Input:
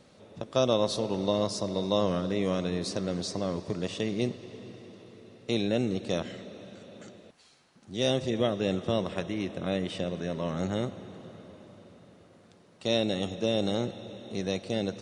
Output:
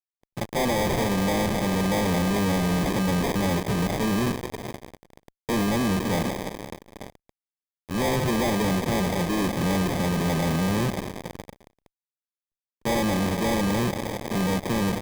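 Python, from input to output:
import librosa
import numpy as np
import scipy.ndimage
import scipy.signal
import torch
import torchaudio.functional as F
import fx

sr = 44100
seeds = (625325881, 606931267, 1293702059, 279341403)

y = fx.dynamic_eq(x, sr, hz=170.0, q=0.87, threshold_db=-39.0, ratio=4.0, max_db=4)
y = fx.fuzz(y, sr, gain_db=41.0, gate_db=-43.0)
y = fx.sample_hold(y, sr, seeds[0], rate_hz=1400.0, jitter_pct=0)
y = F.gain(torch.from_numpy(y), -8.5).numpy()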